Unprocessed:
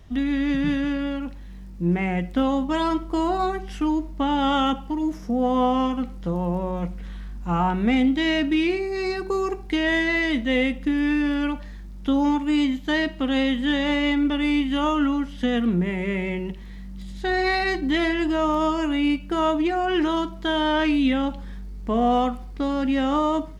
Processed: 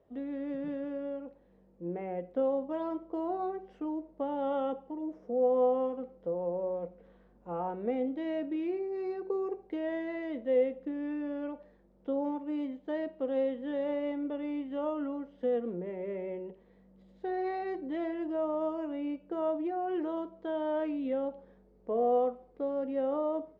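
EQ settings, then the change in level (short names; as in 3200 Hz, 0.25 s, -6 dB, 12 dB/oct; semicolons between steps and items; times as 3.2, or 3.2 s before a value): band-pass 510 Hz, Q 4; 0.0 dB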